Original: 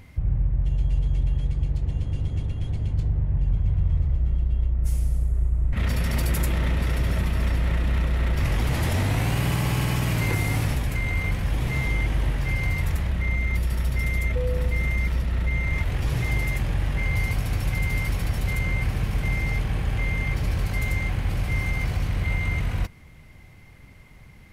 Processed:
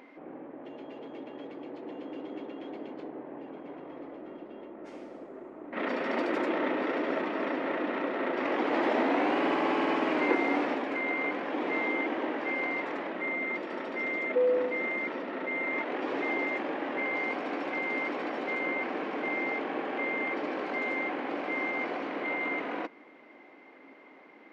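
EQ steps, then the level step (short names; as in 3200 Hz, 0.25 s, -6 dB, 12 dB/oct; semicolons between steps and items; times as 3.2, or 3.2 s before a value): elliptic high-pass 280 Hz, stop band 60 dB; tape spacing loss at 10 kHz 45 dB; +9.0 dB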